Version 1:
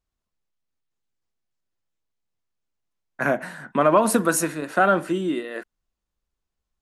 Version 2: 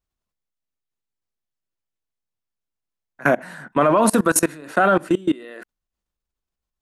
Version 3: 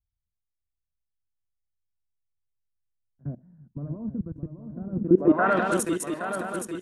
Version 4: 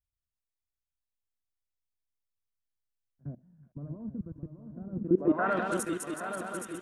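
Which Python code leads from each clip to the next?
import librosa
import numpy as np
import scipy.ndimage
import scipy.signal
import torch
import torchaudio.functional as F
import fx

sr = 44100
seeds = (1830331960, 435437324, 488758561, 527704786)

y1 = fx.level_steps(x, sr, step_db=23)
y1 = y1 * 10.0 ** (8.0 / 20.0)
y2 = fx.echo_swing(y1, sr, ms=821, ratio=3, feedback_pct=44, wet_db=-8.5)
y2 = fx.filter_sweep_lowpass(y2, sr, from_hz=100.0, to_hz=10000.0, start_s=4.91, end_s=5.8, q=1.4)
y3 = fx.echo_wet_highpass(y2, sr, ms=372, feedback_pct=80, hz=1500.0, wet_db=-10.0)
y3 = y3 * 10.0 ** (-6.5 / 20.0)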